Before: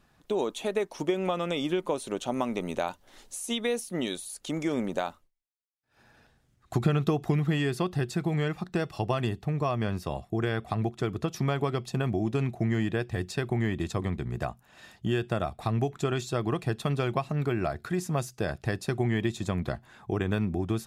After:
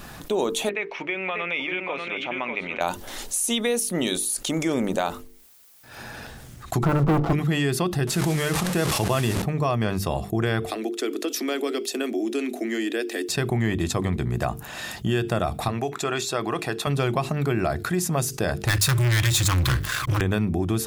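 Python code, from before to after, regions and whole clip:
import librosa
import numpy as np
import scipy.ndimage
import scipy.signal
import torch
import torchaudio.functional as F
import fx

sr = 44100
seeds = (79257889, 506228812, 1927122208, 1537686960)

y = fx.chain(x, sr, fx.ladder_lowpass(hz=2500.0, resonance_pct=70),
    fx.tilt_eq(slope=3.0),
    fx.echo_single(ms=592, db=-7.0), at=(0.69, 2.81))
y = fx.chain(y, sr, fx.lower_of_two(delay_ms=6.0),
    fx.brickwall_lowpass(high_hz=1500.0),
    fx.leveller(passes=3), at=(6.83, 7.33))
y = fx.chain(y, sr, fx.delta_mod(bps=64000, step_db=-35.5),
    fx.notch(hz=750.0, q=16.0),
    fx.sustainer(db_per_s=44.0), at=(8.07, 9.42))
y = fx.chain(y, sr, fx.steep_highpass(hz=250.0, slope=72),
    fx.peak_eq(hz=940.0, db=-14.0, octaves=1.1),
    fx.quant_float(bits=8), at=(10.66, 13.29))
y = fx.chain(y, sr, fx.highpass(hz=620.0, slope=6),
    fx.high_shelf(hz=5800.0, db=-7.0),
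    fx.notch(hz=3100.0, q=16.0), at=(15.68, 16.87))
y = fx.chain(y, sr, fx.brickwall_bandstop(low_hz=160.0, high_hz=1000.0),
    fx.leveller(passes=5), at=(18.67, 20.21))
y = fx.high_shelf(y, sr, hz=8700.0, db=9.5)
y = fx.hum_notches(y, sr, base_hz=50, count=9)
y = fx.env_flatten(y, sr, amount_pct=50)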